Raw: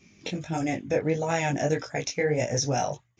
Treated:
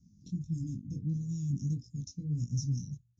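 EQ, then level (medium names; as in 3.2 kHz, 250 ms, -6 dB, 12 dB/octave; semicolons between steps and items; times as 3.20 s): inverse Chebyshev band-stop 660–2000 Hz, stop band 70 dB; distance through air 110 m; bass shelf 410 Hz +5.5 dB; -5.0 dB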